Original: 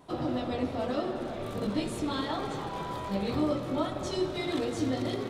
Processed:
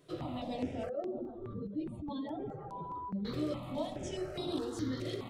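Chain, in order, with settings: 0.89–3.25 spectral contrast raised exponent 2.1; step phaser 4.8 Hz 230–6800 Hz; gain -4 dB

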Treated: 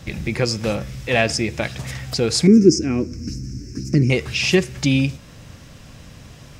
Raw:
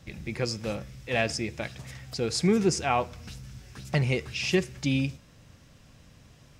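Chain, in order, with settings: 2.47–4.1 EQ curve 170 Hz 0 dB, 300 Hz +14 dB, 770 Hz -27 dB, 1600 Hz -13 dB, 2400 Hz -12 dB, 3500 Hz -27 dB, 5300 Hz +4 dB, 9600 Hz -12 dB; in parallel at +0.5 dB: compressor, threshold -35 dBFS, peak gain reduction 19.5 dB; on the sum: gain +6.5 dB

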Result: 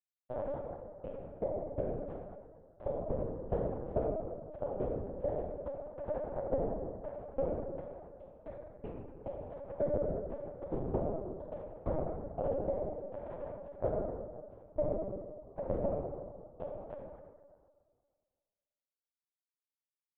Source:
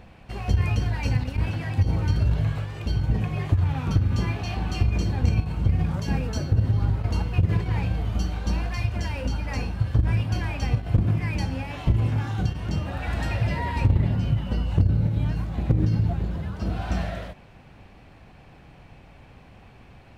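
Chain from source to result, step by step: HPF 40 Hz 6 dB/oct; notches 50/100/150/200/250/300 Hz; compressor 12:1, threshold -36 dBFS, peak gain reduction 20 dB; bit-crush 5-bit; synth low-pass 590 Hz, resonance Q 4.9; plate-style reverb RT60 1.8 s, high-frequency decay 0.45×, DRR -7 dB; LPC vocoder at 8 kHz pitch kept

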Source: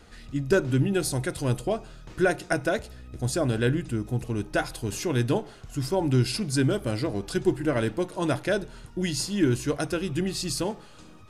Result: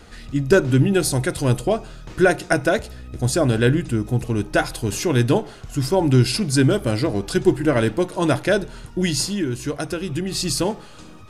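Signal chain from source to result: 9.25–10.32 compressor 3:1, threshold -30 dBFS, peak gain reduction 10 dB; gain +7 dB

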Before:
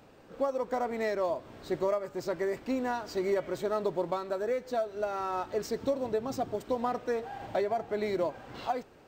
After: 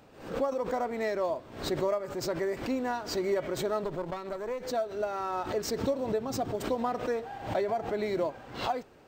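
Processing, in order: 3.84–4.63 tube stage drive 24 dB, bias 0.75; backwards sustainer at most 100 dB/s

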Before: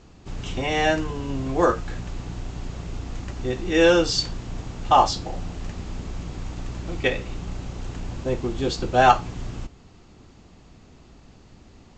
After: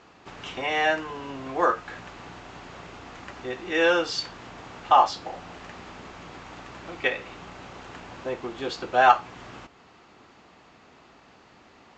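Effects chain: in parallel at +1 dB: compressor, threshold -34 dBFS, peak gain reduction 22 dB; on the sum: band-pass 1400 Hz, Q 0.72

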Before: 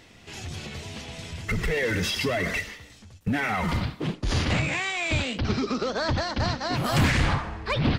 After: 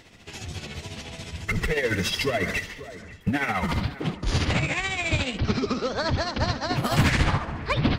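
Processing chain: tremolo 14 Hz, depth 56%; dark delay 0.537 s, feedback 47%, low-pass 1900 Hz, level -15.5 dB; gain +3 dB

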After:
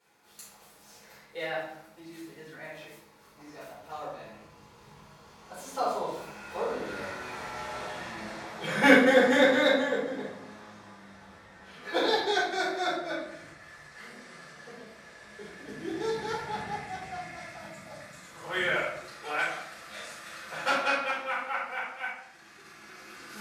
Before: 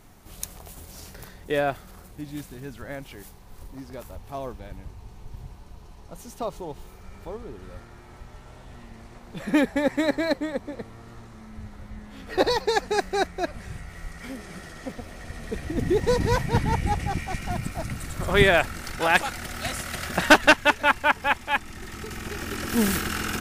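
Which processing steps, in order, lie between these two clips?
Doppler pass-by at 7.63, 35 m/s, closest 27 m; weighting filter A; shoebox room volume 180 m³, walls mixed, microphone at 4.5 m

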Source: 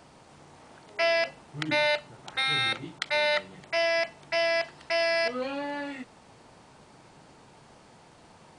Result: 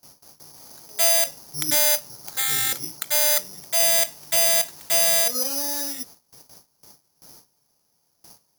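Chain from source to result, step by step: gate with hold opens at -42 dBFS; high shelf 3200 Hz -11 dB, from 3.8 s -4 dB, from 5.22 s -10.5 dB; careless resampling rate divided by 8×, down none, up zero stuff; gain -1.5 dB

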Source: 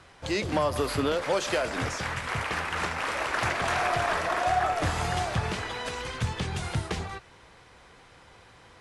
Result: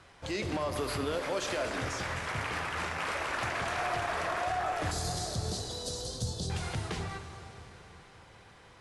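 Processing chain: limiter -21 dBFS, peak gain reduction 7 dB; 4.91–6.5 EQ curve 520 Hz 0 dB, 2200 Hz -30 dB, 4100 Hz +8 dB; plate-style reverb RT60 4.3 s, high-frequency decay 0.85×, DRR 7 dB; gain -3.5 dB

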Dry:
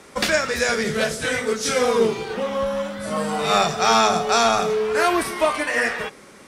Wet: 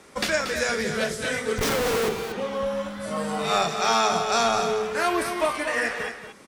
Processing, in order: 1.58–2.09 Schmitt trigger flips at -24 dBFS; 3.69–4.12 HPF 250 Hz 6 dB/oct; echo 0.233 s -8.5 dB; gain -4.5 dB

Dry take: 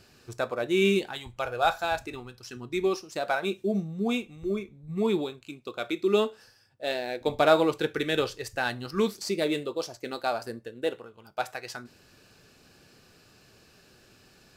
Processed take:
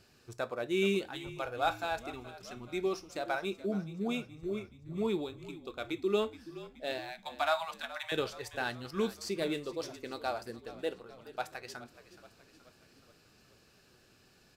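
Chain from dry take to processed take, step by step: 6.98–8.12 steep high-pass 650 Hz 96 dB/oct; on a send: frequency-shifting echo 0.424 s, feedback 58%, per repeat -43 Hz, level -16 dB; on the sum: gain -6.5 dB

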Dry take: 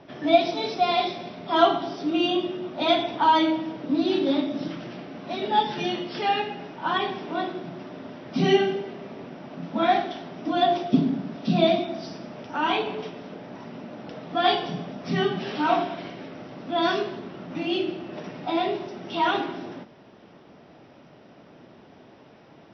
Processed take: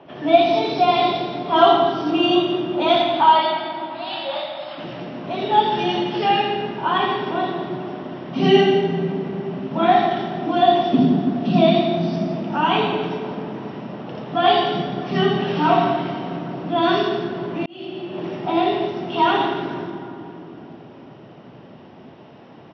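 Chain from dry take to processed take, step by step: 2.96–4.78 brick-wall FIR band-pass 540–5300 Hz; echo 0.168 s -10.5 dB; reverb RT60 3.5 s, pre-delay 55 ms, DRR 3.5 dB; 17.66–18.34 fade in; gain -3.5 dB

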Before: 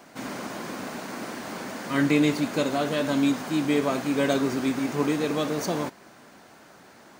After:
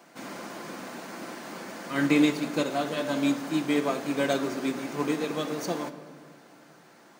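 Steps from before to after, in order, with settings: HPF 170 Hz 12 dB/oct; shoebox room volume 4000 m³, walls mixed, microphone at 0.8 m; upward expander 1.5:1, over -27 dBFS

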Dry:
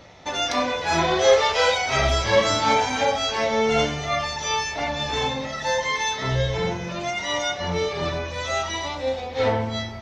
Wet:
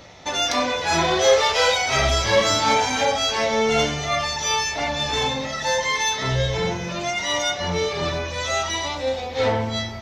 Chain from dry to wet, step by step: high shelf 4300 Hz +6.5 dB; in parallel at -6.5 dB: soft clip -22 dBFS, distortion -9 dB; on the sum: gain -1.5 dB

